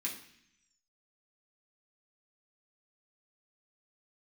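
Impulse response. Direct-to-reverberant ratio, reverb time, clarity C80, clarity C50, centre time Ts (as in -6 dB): -4.0 dB, 0.65 s, 11.5 dB, 8.0 dB, 24 ms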